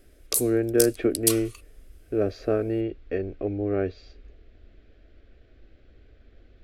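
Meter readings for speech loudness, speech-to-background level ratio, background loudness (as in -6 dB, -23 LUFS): -26.5 LUFS, 0.5 dB, -27.0 LUFS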